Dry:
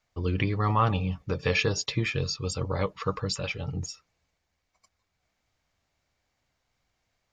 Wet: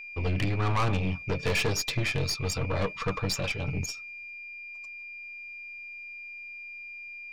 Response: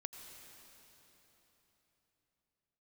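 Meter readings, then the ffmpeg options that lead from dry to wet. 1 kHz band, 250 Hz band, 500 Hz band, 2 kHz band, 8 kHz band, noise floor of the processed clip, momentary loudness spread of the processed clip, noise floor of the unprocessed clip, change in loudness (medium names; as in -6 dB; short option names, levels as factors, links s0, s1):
-3.0 dB, -1.5 dB, -1.5 dB, +2.0 dB, +2.0 dB, -43 dBFS, 13 LU, -79 dBFS, -3.0 dB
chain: -af "aeval=exprs='val(0)+0.00794*sin(2*PI*2400*n/s)':c=same,aeval=exprs='(tanh(25.1*val(0)+0.55)-tanh(0.55))/25.1':c=same,volume=1.78"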